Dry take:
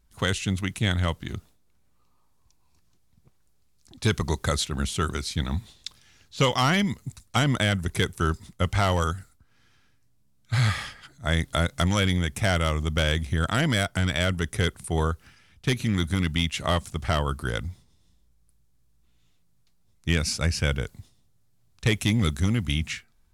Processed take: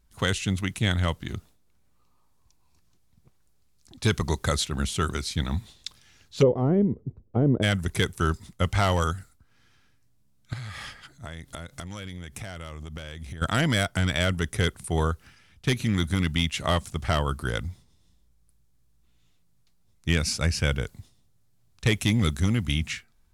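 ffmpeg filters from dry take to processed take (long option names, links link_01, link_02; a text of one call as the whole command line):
ffmpeg -i in.wav -filter_complex "[0:a]asplit=3[link_01][link_02][link_03];[link_01]afade=type=out:start_time=6.41:duration=0.02[link_04];[link_02]lowpass=frequency=430:width_type=q:width=3.4,afade=type=in:start_time=6.41:duration=0.02,afade=type=out:start_time=7.62:duration=0.02[link_05];[link_03]afade=type=in:start_time=7.62:duration=0.02[link_06];[link_04][link_05][link_06]amix=inputs=3:normalize=0,asettb=1/sr,asplit=3[link_07][link_08][link_09];[link_07]atrim=end=10.534[link_10];[link_08]atrim=start=10.53:end=13.42,asetpts=PTS-STARTPTS,afade=type=in:duration=0.004:curve=qsin,afade=type=out:start_time=2.886:duration=0.004:curve=qsin,acompressor=threshold=-33dB:ratio=16:attack=3.2:release=140:knee=1:detection=peak[link_11];[link_09]atrim=start=13.416[link_12];[link_10][link_11]acrossfade=duration=0.004:curve1=hsin:curve2=qsin[link_13];[link_13][link_12]acrossfade=duration=0.004:curve1=qsin:curve2=hsin" out.wav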